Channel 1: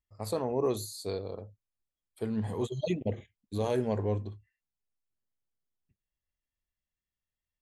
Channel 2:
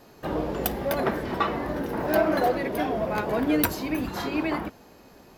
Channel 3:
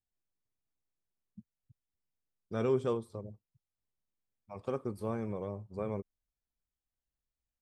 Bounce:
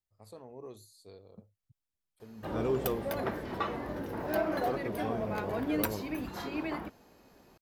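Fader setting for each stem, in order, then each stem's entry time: −17.5, −8.5, −1.5 decibels; 0.00, 2.20, 0.00 seconds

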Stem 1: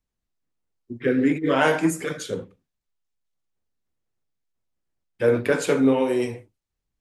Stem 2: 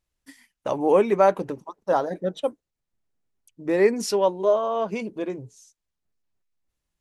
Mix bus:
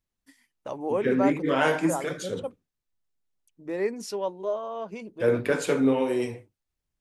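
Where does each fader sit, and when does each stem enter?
−3.5, −9.0 decibels; 0.00, 0.00 seconds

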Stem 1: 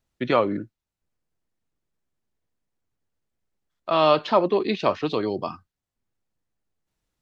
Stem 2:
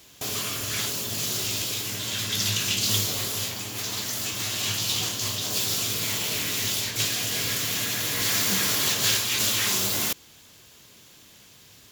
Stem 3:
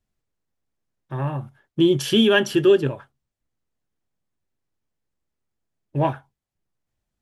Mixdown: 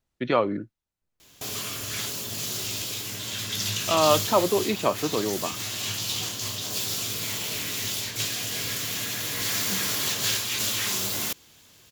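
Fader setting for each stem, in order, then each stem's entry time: −2.0 dB, −3.0 dB, muted; 0.00 s, 1.20 s, muted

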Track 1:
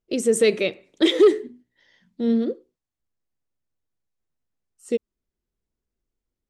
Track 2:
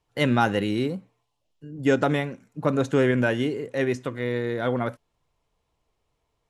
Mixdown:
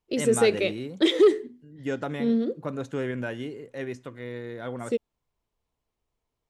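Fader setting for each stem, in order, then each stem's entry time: −3.0, −9.5 decibels; 0.00, 0.00 seconds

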